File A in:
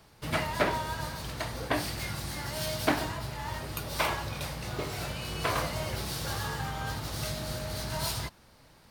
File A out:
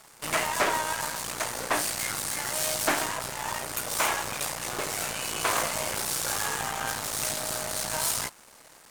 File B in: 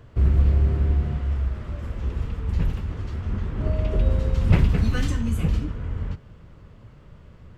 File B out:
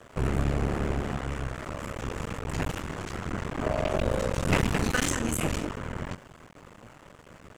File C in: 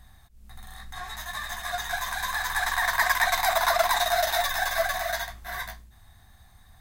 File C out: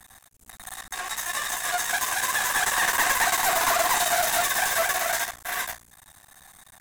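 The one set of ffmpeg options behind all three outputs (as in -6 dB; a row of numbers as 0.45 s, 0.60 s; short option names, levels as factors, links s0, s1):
-filter_complex "[0:a]aeval=exprs='max(val(0),0)':c=same,highshelf=f=5800:t=q:w=1.5:g=9,asplit=2[s0][s1];[s1]highpass=f=720:p=1,volume=14.1,asoftclip=type=tanh:threshold=0.562[s2];[s0][s2]amix=inputs=2:normalize=0,lowpass=f=5000:p=1,volume=0.501,volume=0.562"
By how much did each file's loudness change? +5.0 LU, -5.5 LU, +2.5 LU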